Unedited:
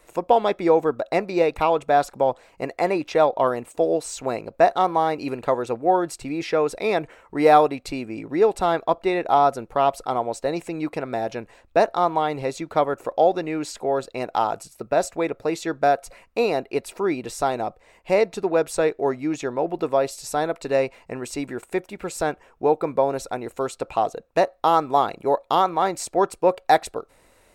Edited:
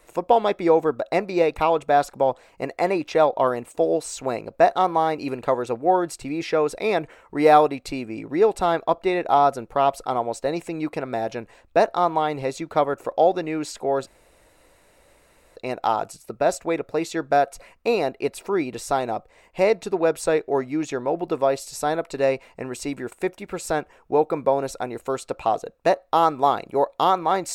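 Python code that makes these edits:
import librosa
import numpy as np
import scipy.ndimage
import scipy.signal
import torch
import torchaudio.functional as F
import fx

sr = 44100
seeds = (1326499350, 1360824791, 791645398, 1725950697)

y = fx.edit(x, sr, fx.insert_room_tone(at_s=14.07, length_s=1.49), tone=tone)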